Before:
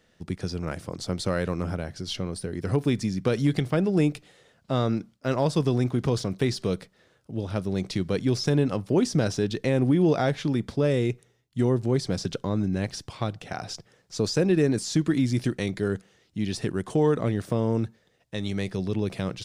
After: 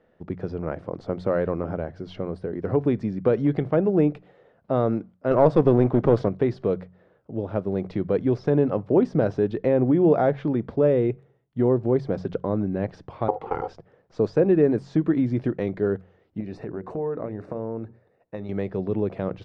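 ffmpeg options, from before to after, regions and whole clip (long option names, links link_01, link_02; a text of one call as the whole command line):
ffmpeg -i in.wav -filter_complex "[0:a]asettb=1/sr,asplit=3[link_01][link_02][link_03];[link_01]atrim=end=5.314[link_04];[link_02]atrim=start=5.31:end=6.29,asetpts=PTS-STARTPTS,afade=type=in:duration=0.004:curve=qsin,afade=type=out:start_time=0.976:duration=0.004:curve=qsin,acontrast=30,aeval=exprs='clip(val(0),-1,0.0631)':channel_layout=same[link_05];[link_03]atrim=start=6.286[link_06];[link_04][link_05]acrossfade=duration=0.004:curve1=hsin:curve2=qsin[link_07];[link_07][link_06]acrossfade=duration=0.004:curve1=qsin:curve2=hsin,asettb=1/sr,asplit=3[link_08][link_09][link_10];[link_08]atrim=end=13.284[link_11];[link_09]atrim=start=13.28:end=13.68,asetpts=PTS-STARTPTS,afade=type=in:duration=0.004:curve=qsin,afade=type=out:start_time=0.396:duration=0.004:curve=qsin,equalizer=frequency=230:width_type=o:width=2.3:gain=12.5,aeval=exprs='val(0)*sin(2*PI*630*n/s)':channel_layout=same[link_12];[link_10]atrim=start=13.676[link_13];[link_11][link_12]acrossfade=duration=0.004:curve1=hsin:curve2=qsin[link_14];[link_14][link_13]acrossfade=duration=0.004:curve1=qsin:curve2=hsin,asettb=1/sr,asplit=3[link_15][link_16][link_17];[link_15]atrim=end=16.404[link_18];[link_16]atrim=start=16.4:end=18.49,asetpts=PTS-STARTPTS,afade=type=in:duration=0.004:curve=qsin,afade=type=out:start_time=2.086:duration=0.004:curve=qsin,asuperstop=centerf=3200:order=4:qfactor=4.7,acompressor=threshold=-29dB:ratio=4:attack=3.2:release=140:knee=1:detection=peak,bandreject=frequency=60:width_type=h:width=6,bandreject=frequency=120:width_type=h:width=6,bandreject=frequency=180:width_type=h:width=6,bandreject=frequency=240:width_type=h:width=6,bandreject=frequency=300:width_type=h:width=6,bandreject=frequency=360:width_type=h:width=6,bandreject=frequency=420:width_type=h:width=6,bandreject=frequency=480:width_type=h:width=6[link_19];[link_17]atrim=start=18.486[link_20];[link_18][link_19]acrossfade=duration=0.004:curve1=hsin:curve2=qsin[link_21];[link_21][link_20]acrossfade=duration=0.004:curve1=qsin:curve2=hsin,lowpass=1700,equalizer=frequency=540:width=0.7:gain=8,bandreject=frequency=45.47:width_type=h:width=4,bandreject=frequency=90.94:width_type=h:width=4,bandreject=frequency=136.41:width_type=h:width=4,bandreject=frequency=181.88:width_type=h:width=4,volume=-2dB" out.wav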